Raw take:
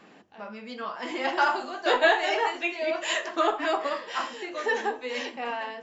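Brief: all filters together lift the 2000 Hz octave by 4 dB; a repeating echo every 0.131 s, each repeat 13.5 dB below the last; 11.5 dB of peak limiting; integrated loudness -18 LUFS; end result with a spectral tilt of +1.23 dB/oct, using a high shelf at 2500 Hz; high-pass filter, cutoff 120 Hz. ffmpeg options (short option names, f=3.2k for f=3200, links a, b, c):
-af "highpass=120,equalizer=f=2k:t=o:g=8,highshelf=f=2.5k:g=-7,alimiter=limit=-18.5dB:level=0:latency=1,aecho=1:1:131|262:0.211|0.0444,volume=11dB"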